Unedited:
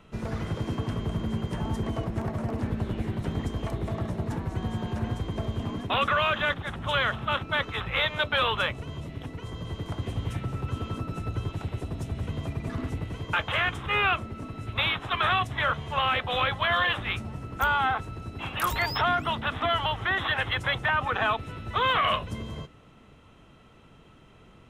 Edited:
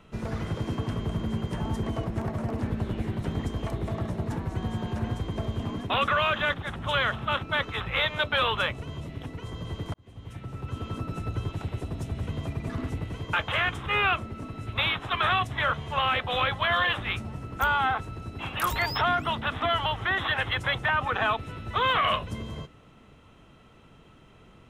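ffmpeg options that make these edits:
ffmpeg -i in.wav -filter_complex "[0:a]asplit=2[link_01][link_02];[link_01]atrim=end=9.94,asetpts=PTS-STARTPTS,afade=type=out:start_time=9.936:duration=0.004:curve=hsin[link_03];[link_02]atrim=start=9.94,asetpts=PTS-STARTPTS,afade=type=in:duration=1.11[link_04];[link_03][link_04]concat=n=2:v=0:a=1" out.wav

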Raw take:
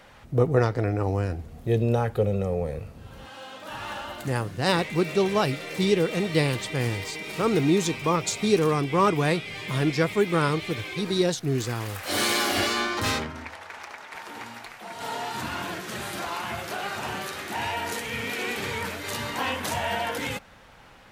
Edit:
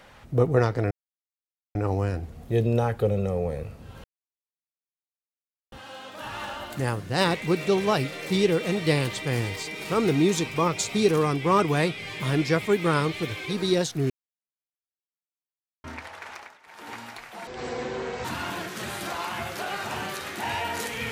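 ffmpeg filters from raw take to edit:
ffmpeg -i in.wav -filter_complex "[0:a]asplit=9[link_01][link_02][link_03][link_04][link_05][link_06][link_07][link_08][link_09];[link_01]atrim=end=0.91,asetpts=PTS-STARTPTS,afade=type=out:start_time=0.906:duration=0.004:curve=hsin,apad=pad_dur=0.84[link_10];[link_02]atrim=start=0.91:end=3.2,asetpts=PTS-STARTPTS,afade=type=in:duration=0.004:curve=hsin,afade=type=out:start_time=2.286:duration=0.004:curve=hsin,apad=pad_dur=1.68[link_11];[link_03]atrim=start=3.2:end=11.58,asetpts=PTS-STARTPTS,afade=type=in:duration=0.004:curve=hsin,afade=type=out:start_time=8.376:duration=0.004:curve=hsin[link_12];[link_04]atrim=start=11.58:end=13.32,asetpts=PTS-STARTPTS,volume=0[link_13];[link_05]atrim=start=13.32:end=14.06,asetpts=PTS-STARTPTS,afade=type=in:duration=0.004:curve=hsin,afade=type=out:start_time=0.5:duration=0.24:silence=0.211349[link_14];[link_06]atrim=start=14.06:end=14.15,asetpts=PTS-STARTPTS,volume=-13.5dB[link_15];[link_07]atrim=start=14.15:end=14.954,asetpts=PTS-STARTPTS,afade=type=in:duration=0.24:silence=0.211349[link_16];[link_08]atrim=start=14.95:end=15.37,asetpts=PTS-STARTPTS,asetrate=23814,aresample=44100[link_17];[link_09]atrim=start=15.366[link_18];[link_10][link_11][link_12][link_13][link_14][link_15][link_16]concat=n=7:v=0:a=1[link_19];[link_19][link_17]acrossfade=duration=0.004:curve1=hsin:curve2=hsin[link_20];[link_20][link_18]acrossfade=duration=0.004:curve1=hsin:curve2=hsin" out.wav

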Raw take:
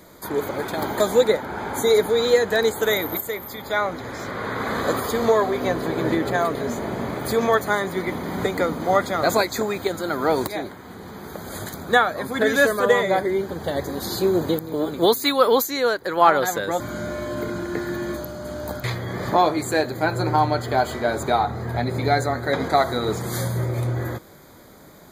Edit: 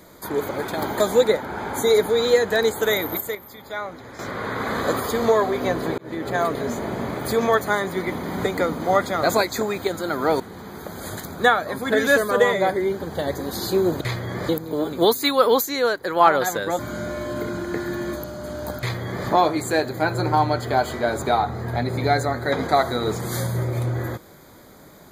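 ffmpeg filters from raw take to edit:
ffmpeg -i in.wav -filter_complex "[0:a]asplit=7[link_01][link_02][link_03][link_04][link_05][link_06][link_07];[link_01]atrim=end=3.352[link_08];[link_02]atrim=start=3.348:end=4.192,asetpts=PTS-STARTPTS,volume=-7.5dB[link_09];[link_03]atrim=start=4.188:end=5.98,asetpts=PTS-STARTPTS,afade=type=out:start_time=1.788:duration=0.004:curve=hsin[link_10];[link_04]atrim=start=5.98:end=10.402,asetpts=PTS-STARTPTS,afade=type=in:duration=0.44[link_11];[link_05]atrim=start=10.888:end=14.502[link_12];[link_06]atrim=start=18.798:end=19.282[link_13];[link_07]atrim=start=14.498[link_14];[link_08][link_09]acrossfade=duration=0.004:curve1=hsin:curve2=hsin[link_15];[link_10][link_11]concat=n=2:v=0:a=1[link_16];[link_15][link_16]acrossfade=duration=0.004:curve1=hsin:curve2=hsin[link_17];[link_17][link_12]acrossfade=duration=0.004:curve1=hsin:curve2=hsin[link_18];[link_18][link_13]acrossfade=duration=0.004:curve1=hsin:curve2=hsin[link_19];[link_19][link_14]acrossfade=duration=0.004:curve1=hsin:curve2=hsin" out.wav

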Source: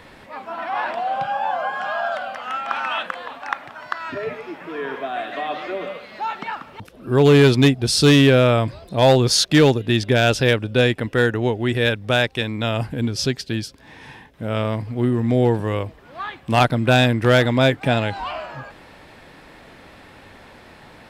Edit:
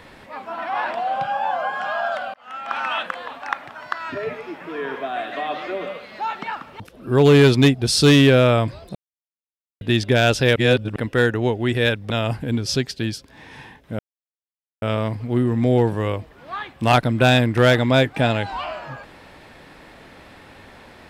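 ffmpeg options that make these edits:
ffmpeg -i in.wav -filter_complex "[0:a]asplit=8[link_01][link_02][link_03][link_04][link_05][link_06][link_07][link_08];[link_01]atrim=end=2.34,asetpts=PTS-STARTPTS,afade=type=out:start_time=2.336:duration=0.004:curve=hsin[link_09];[link_02]atrim=start=2.34:end=8.95,asetpts=PTS-STARTPTS,afade=type=in:duration=0.47,afade=type=out:start_time=6.606:duration=0.004:curve=hsin[link_10];[link_03]atrim=start=8.95:end=9.81,asetpts=PTS-STARTPTS,volume=0[link_11];[link_04]atrim=start=9.81:end=10.562,asetpts=PTS-STARTPTS,afade=type=in:duration=0.004:curve=hsin[link_12];[link_05]atrim=start=10.558:end=10.962,asetpts=PTS-STARTPTS,areverse[link_13];[link_06]atrim=start=10.958:end=12.102[link_14];[link_07]atrim=start=12.598:end=14.49,asetpts=PTS-STARTPTS,afade=type=out:start_time=1.888:duration=0.004:curve=hsin,apad=pad_dur=0.83[link_15];[link_08]atrim=start=14.49,asetpts=PTS-STARTPTS,afade=type=in:duration=0.004:curve=hsin[link_16];[link_09][link_10][link_11][link_12]concat=n=4:v=0:a=1[link_17];[link_17][link_13]acrossfade=duration=0.004:curve1=hsin:curve2=hsin[link_18];[link_18][link_14]acrossfade=duration=0.004:curve1=hsin:curve2=hsin[link_19];[link_15][link_16]concat=n=2:v=0:a=1[link_20];[link_19][link_20]acrossfade=duration=0.004:curve1=hsin:curve2=hsin" out.wav

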